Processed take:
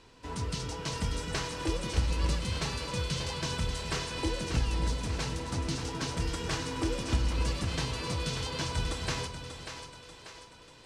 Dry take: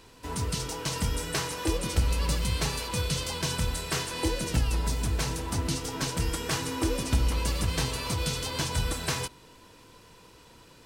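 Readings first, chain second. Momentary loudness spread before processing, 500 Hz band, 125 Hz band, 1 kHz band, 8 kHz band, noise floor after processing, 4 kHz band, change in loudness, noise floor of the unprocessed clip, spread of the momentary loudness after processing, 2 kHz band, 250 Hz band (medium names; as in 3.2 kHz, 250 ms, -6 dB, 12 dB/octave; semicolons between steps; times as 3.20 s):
4 LU, -2.5 dB, -3.0 dB, -2.5 dB, -6.5 dB, -53 dBFS, -3.0 dB, -3.5 dB, -54 dBFS, 11 LU, -3.0 dB, -2.5 dB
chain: low-pass 6.7 kHz 12 dB/octave; two-band feedback delay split 350 Hz, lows 256 ms, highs 589 ms, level -8 dB; trim -3.5 dB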